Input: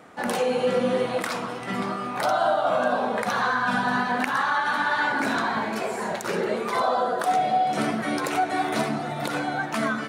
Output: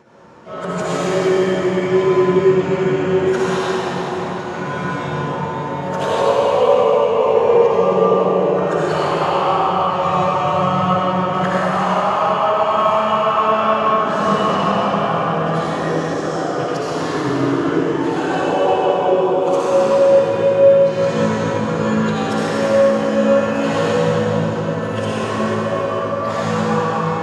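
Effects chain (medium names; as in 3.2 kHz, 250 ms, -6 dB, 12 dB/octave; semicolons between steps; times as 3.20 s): treble shelf 11 kHz -9 dB; de-hum 56.21 Hz, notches 30; plain phase-vocoder stretch 2×; reverberation RT60 3.0 s, pre-delay 37 ms, DRR -9 dB; speed mistake 45 rpm record played at 33 rpm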